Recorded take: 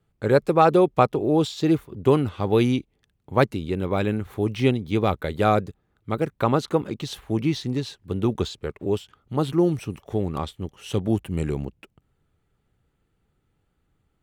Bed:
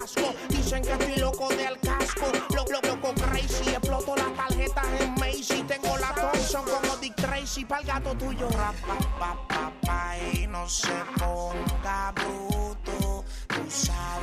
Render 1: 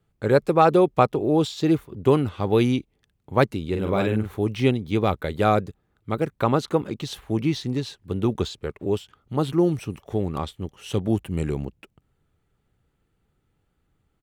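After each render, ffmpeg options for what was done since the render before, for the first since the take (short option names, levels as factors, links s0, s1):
-filter_complex "[0:a]asplit=3[s0][s1][s2];[s0]afade=t=out:st=3.72:d=0.02[s3];[s1]asplit=2[s4][s5];[s5]adelay=46,volume=0.631[s6];[s4][s6]amix=inputs=2:normalize=0,afade=t=in:st=3.72:d=0.02,afade=t=out:st=4.35:d=0.02[s7];[s2]afade=t=in:st=4.35:d=0.02[s8];[s3][s7][s8]amix=inputs=3:normalize=0"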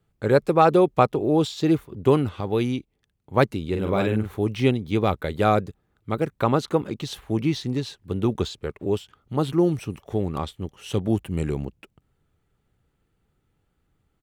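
-filter_complex "[0:a]asplit=3[s0][s1][s2];[s0]atrim=end=2.412[s3];[s1]atrim=start=2.408:end=3.342,asetpts=PTS-STARTPTS,volume=0.631[s4];[s2]atrim=start=3.338[s5];[s3][s4]acrossfade=d=0.004:c1=hsin:c2=hsin[s6];[s6][s5]acrossfade=d=0.004:c1=hsin:c2=hsin"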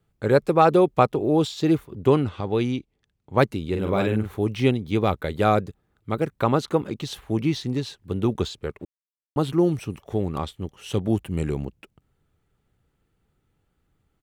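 -filter_complex "[0:a]asettb=1/sr,asplit=3[s0][s1][s2];[s0]atrim=end=2.074[s3];[s1]atrim=start=2.07:end=3.38,asetpts=PTS-STARTPTS,afade=t=in:d=0.004:c=qsin,afade=t=out:st=1.306:d=0.004:c=qsin,lowpass=7900[s4];[s2]atrim=start=3.376[s5];[s3][s4]acrossfade=d=0.004:c1=hsin:c2=qsin[s6];[s6][s5]acrossfade=d=0.004:c1=qsin:c2=hsin,asplit=3[s7][s8][s9];[s7]atrim=end=8.85,asetpts=PTS-STARTPTS,afade=t=out:st=8.846:d=0.004:c=hsin[s10];[s8]atrim=start=8.85:end=9.36,asetpts=PTS-STARTPTS,volume=0[s11];[s9]atrim=start=9.36,asetpts=PTS-STARTPTS,afade=t=in:d=0.004:c=hsin[s12];[s10][s11][s12]concat=n=3:v=0:a=1"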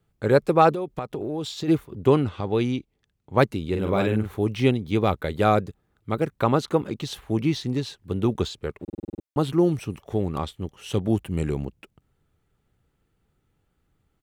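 -filter_complex "[0:a]asplit=3[s0][s1][s2];[s0]afade=t=out:st=0.72:d=0.02[s3];[s1]acompressor=threshold=0.0562:ratio=12:attack=3.2:release=140:knee=1:detection=peak,afade=t=in:st=0.72:d=0.02,afade=t=out:st=1.67:d=0.02[s4];[s2]afade=t=in:st=1.67:d=0.02[s5];[s3][s4][s5]amix=inputs=3:normalize=0,asplit=9[s6][s7][s8][s9][s10][s11][s12][s13][s14];[s6]atrim=end=8.882[s15];[s7]atrim=start=8.828:end=8.882[s16];[s8]atrim=start=8.828:end=8.882[s17];[s9]atrim=start=8.828:end=8.882[s18];[s10]atrim=start=8.828:end=8.882[s19];[s11]atrim=start=8.828:end=8.882[s20];[s12]atrim=start=8.828:end=8.882[s21];[s13]atrim=start=8.828:end=8.882[s22];[s14]atrim=start=9.228[s23];[s15][s16]acrossfade=d=0.004:c1=hsin:c2=hsin[s24];[s24][s17]acrossfade=d=0.004:c1=hsin:c2=hsin[s25];[s25][s18]acrossfade=d=0.004:c1=hsin:c2=hsin[s26];[s26][s19]acrossfade=d=0.004:c1=hsin:c2=hsin[s27];[s27][s20]acrossfade=d=0.004:c1=hsin:c2=hsin[s28];[s28][s21]acrossfade=d=0.004:c1=hsin:c2=hsin[s29];[s29][s22]acrossfade=d=0.004:c1=hsin:c2=hsin[s30];[s30][s23]acrossfade=d=0.004:c1=hsin:c2=hsin"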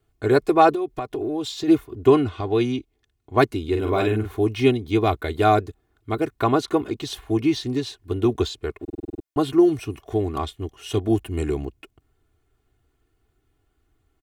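-af "aecho=1:1:2.8:0.82"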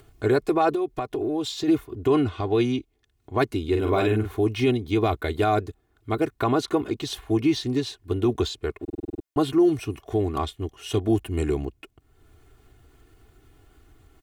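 -af "alimiter=limit=0.251:level=0:latency=1:release=40,acompressor=mode=upward:threshold=0.00891:ratio=2.5"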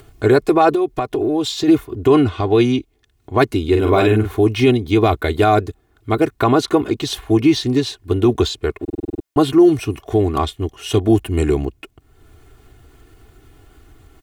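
-af "volume=2.51"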